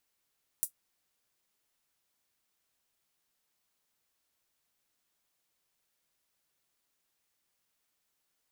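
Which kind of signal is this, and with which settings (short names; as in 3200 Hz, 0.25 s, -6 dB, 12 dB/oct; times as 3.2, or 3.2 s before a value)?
closed hi-hat, high-pass 9000 Hz, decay 0.10 s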